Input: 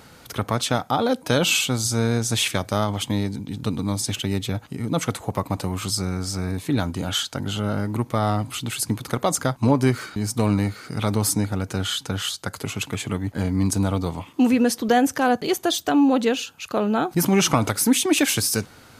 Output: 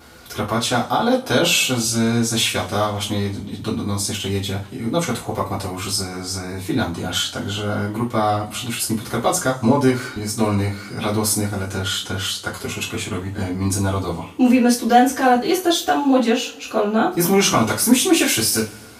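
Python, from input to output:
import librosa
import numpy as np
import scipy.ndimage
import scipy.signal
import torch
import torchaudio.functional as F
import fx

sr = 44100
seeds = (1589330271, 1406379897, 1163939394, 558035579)

y = fx.vibrato(x, sr, rate_hz=1.4, depth_cents=7.6)
y = fx.rev_double_slope(y, sr, seeds[0], early_s=0.25, late_s=1.9, knee_db=-27, drr_db=-7.0)
y = F.gain(torch.from_numpy(y), -4.0).numpy()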